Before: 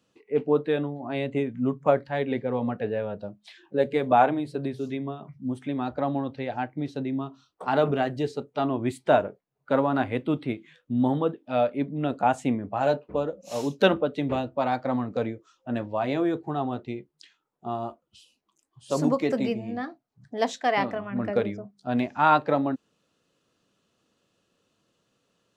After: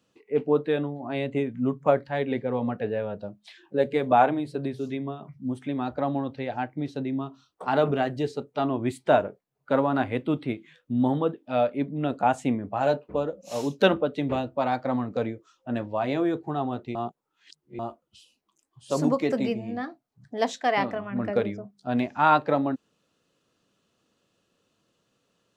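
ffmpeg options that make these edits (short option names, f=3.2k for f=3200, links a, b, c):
-filter_complex "[0:a]asplit=3[a][b][c];[a]atrim=end=16.952[d];[b]atrim=start=16.948:end=17.792,asetpts=PTS-STARTPTS,areverse[e];[c]atrim=start=17.788[f];[d][e]acrossfade=d=0.004:c1=hsin:c2=hsin[g];[g][f]acrossfade=d=0.004:c1=hsin:c2=hsin"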